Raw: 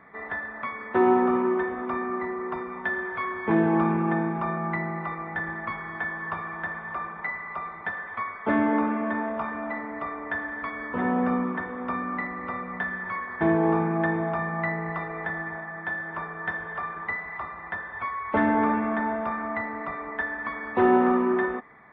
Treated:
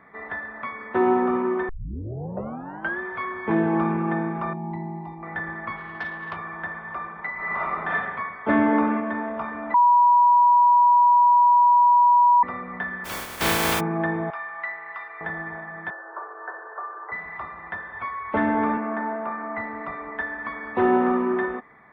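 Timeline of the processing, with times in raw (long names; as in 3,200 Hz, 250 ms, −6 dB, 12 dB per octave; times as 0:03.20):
0:01.69: tape start 1.31 s
0:04.53–0:05.23: drawn EQ curve 350 Hz 0 dB, 520 Hz −17 dB, 890 Hz +2 dB, 1,300 Hz −27 dB, 2,400 Hz −13 dB, 5,100 Hz −7 dB
0:05.76–0:06.37: saturating transformer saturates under 1,100 Hz
0:07.33–0:07.89: thrown reverb, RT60 1.4 s, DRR −9 dB
0:08.49–0:09.00: clip gain +3.5 dB
0:09.74–0:12.43: beep over 970 Hz −12.5 dBFS
0:13.04–0:13.79: compressing power law on the bin magnitudes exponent 0.21
0:14.30–0:15.21: high-pass filter 1,200 Hz
0:15.90–0:17.12: Chebyshev band-pass filter 360–1,600 Hz, order 4
0:18.77–0:19.58: band-pass filter 220–2,100 Hz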